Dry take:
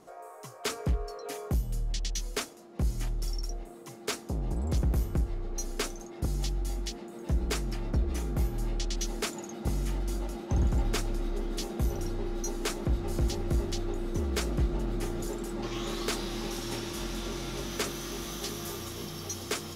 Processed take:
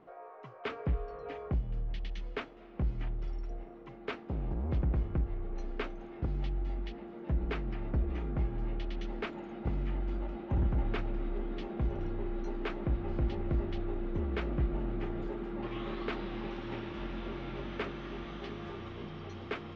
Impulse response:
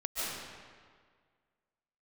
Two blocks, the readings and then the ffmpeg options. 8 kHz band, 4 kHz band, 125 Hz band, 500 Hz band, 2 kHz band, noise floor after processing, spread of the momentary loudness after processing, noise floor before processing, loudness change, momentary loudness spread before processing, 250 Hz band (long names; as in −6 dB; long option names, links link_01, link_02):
below −30 dB, −12.5 dB, −3.0 dB, −3.0 dB, −3.5 dB, −50 dBFS, 9 LU, −47 dBFS, −3.5 dB, 7 LU, −3.0 dB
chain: -filter_complex "[0:a]lowpass=frequency=2800:width=0.5412,lowpass=frequency=2800:width=1.3066,asplit=2[link_01][link_02];[1:a]atrim=start_sample=2205,adelay=64[link_03];[link_02][link_03]afir=irnorm=-1:irlink=0,volume=-26dB[link_04];[link_01][link_04]amix=inputs=2:normalize=0,volume=-3dB"